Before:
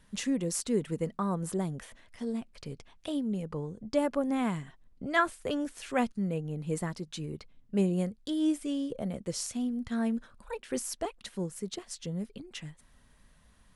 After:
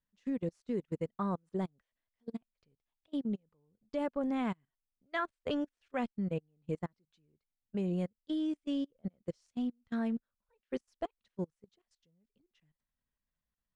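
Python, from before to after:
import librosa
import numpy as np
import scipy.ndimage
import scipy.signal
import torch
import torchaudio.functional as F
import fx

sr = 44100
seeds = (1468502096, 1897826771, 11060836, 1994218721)

y = scipy.signal.sosfilt(scipy.signal.butter(2, 4700.0, 'lowpass', fs=sr, output='sos'), x)
y = fx.level_steps(y, sr, step_db=16)
y = fx.upward_expand(y, sr, threshold_db=-49.0, expansion=2.5)
y = y * 10.0 ** (1.0 / 20.0)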